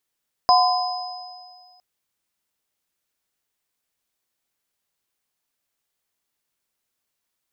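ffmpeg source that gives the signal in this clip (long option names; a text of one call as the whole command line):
ffmpeg -f lavfi -i "aevalsrc='0.224*pow(10,-3*t/1.89)*sin(2*PI*730*t)+0.2*pow(10,-3*t/1.35)*sin(2*PI*1020*t)+0.119*pow(10,-3*t/2.13)*sin(2*PI*5040*t)':duration=1.31:sample_rate=44100" out.wav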